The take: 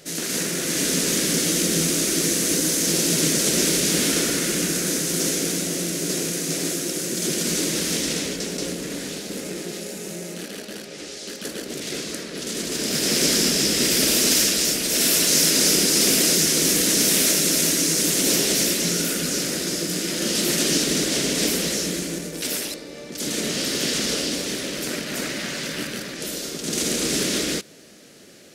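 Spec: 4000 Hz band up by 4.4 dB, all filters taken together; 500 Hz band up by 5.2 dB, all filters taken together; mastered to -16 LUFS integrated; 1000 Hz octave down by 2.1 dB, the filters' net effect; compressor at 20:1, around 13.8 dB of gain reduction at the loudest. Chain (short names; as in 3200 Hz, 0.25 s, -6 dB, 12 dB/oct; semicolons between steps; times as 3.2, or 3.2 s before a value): bell 500 Hz +8 dB; bell 1000 Hz -7 dB; bell 4000 Hz +6 dB; compressor 20:1, threshold -26 dBFS; gain +12.5 dB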